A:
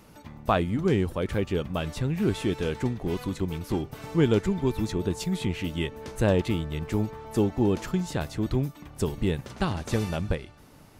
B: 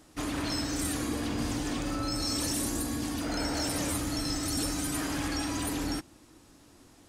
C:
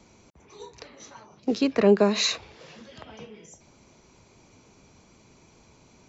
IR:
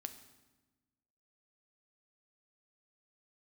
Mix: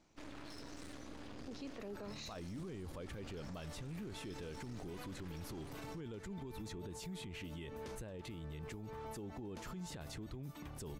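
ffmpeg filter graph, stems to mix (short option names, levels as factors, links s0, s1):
-filter_complex "[0:a]alimiter=limit=0.0891:level=0:latency=1:release=245,adelay=1800,volume=0.75[s0];[1:a]lowpass=5200,aeval=exprs='max(val(0),0)':c=same,volume=0.224[s1];[2:a]volume=0.133[s2];[s0][s2]amix=inputs=2:normalize=0,acompressor=threshold=0.0251:ratio=6,volume=1[s3];[s1][s3]amix=inputs=2:normalize=0,alimiter=level_in=5.62:limit=0.0631:level=0:latency=1:release=30,volume=0.178"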